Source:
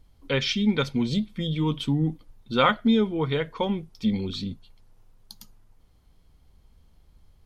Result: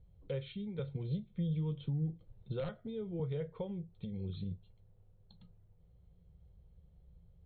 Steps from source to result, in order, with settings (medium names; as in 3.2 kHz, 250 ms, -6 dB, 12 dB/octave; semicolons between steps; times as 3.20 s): high-pass 72 Hz 6 dB/octave; reverberation, pre-delay 6 ms, DRR 11 dB; integer overflow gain 10 dB; brick-wall FIR low-pass 4.3 kHz; compression 3:1, threshold -34 dBFS, peak gain reduction 13.5 dB; FFT filter 170 Hz 0 dB, 240 Hz -21 dB, 480 Hz -4 dB, 1 kHz -20 dB; 0.79–3.20 s: three bands compressed up and down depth 40%; trim +2.5 dB